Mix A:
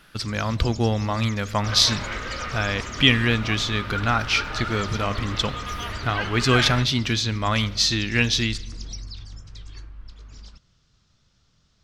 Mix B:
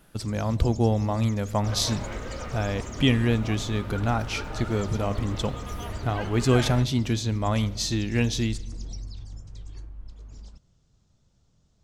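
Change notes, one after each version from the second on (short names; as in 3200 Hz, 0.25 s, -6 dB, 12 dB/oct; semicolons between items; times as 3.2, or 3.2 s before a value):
master: add band shelf 2500 Hz -10.5 dB 2.6 oct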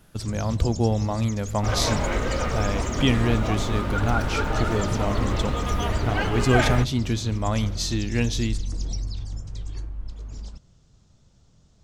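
first sound +7.5 dB; second sound +10.0 dB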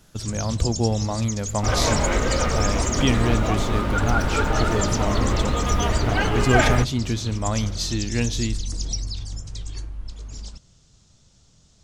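first sound: add high shelf 2400 Hz +11 dB; second sound +3.5 dB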